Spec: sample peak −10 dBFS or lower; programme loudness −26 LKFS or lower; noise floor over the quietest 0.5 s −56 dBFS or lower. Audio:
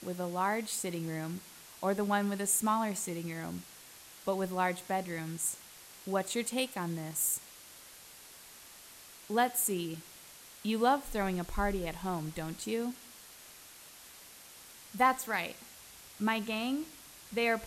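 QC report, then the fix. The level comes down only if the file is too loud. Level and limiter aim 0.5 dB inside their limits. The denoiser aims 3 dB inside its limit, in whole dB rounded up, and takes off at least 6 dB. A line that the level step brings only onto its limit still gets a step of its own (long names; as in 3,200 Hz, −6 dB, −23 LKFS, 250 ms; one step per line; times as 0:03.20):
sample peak −14.5 dBFS: in spec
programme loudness −33.5 LKFS: in spec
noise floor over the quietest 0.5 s −53 dBFS: out of spec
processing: broadband denoise 6 dB, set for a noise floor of −53 dBFS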